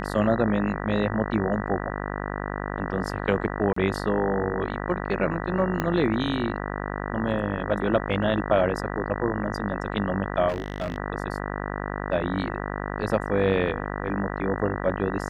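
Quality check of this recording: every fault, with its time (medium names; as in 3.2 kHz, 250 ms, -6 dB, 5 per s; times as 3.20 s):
buzz 50 Hz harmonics 39 -31 dBFS
3.73–3.76 s: dropout 34 ms
5.80 s: pop -11 dBFS
10.48–10.98 s: clipped -23.5 dBFS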